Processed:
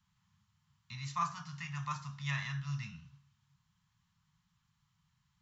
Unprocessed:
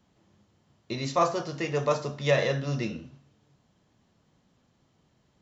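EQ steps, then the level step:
elliptic band-stop filter 170–1,000 Hz, stop band 60 dB
dynamic equaliser 4,500 Hz, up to −5 dB, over −49 dBFS, Q 1.3
−6.5 dB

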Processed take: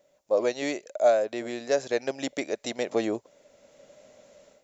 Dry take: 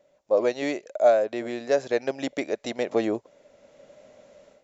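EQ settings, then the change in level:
high-shelf EQ 5,300 Hz +11.5 dB
−2.5 dB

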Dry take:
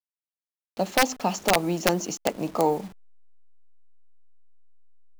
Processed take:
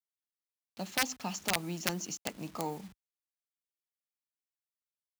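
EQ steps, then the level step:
high-pass filter 51 Hz
parametric band 530 Hz −12 dB 2 octaves
−5.5 dB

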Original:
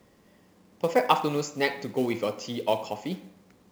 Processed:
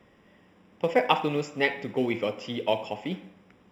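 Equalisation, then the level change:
high-shelf EQ 2,100 Hz +9.5 dB
dynamic equaliser 1,200 Hz, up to −6 dB, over −41 dBFS, Q 1.6
Savitzky-Golay smoothing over 25 samples
0.0 dB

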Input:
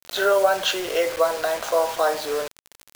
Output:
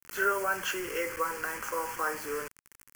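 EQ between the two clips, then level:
phaser with its sweep stopped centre 1,600 Hz, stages 4
−3.0 dB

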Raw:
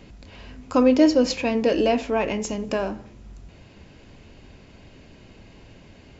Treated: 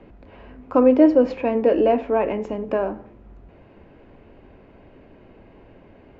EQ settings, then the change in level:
three-way crossover with the lows and the highs turned down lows −13 dB, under 290 Hz, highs −19 dB, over 3,000 Hz
spectral tilt −1.5 dB per octave
high-shelf EQ 2,100 Hz −9.5 dB
+3.5 dB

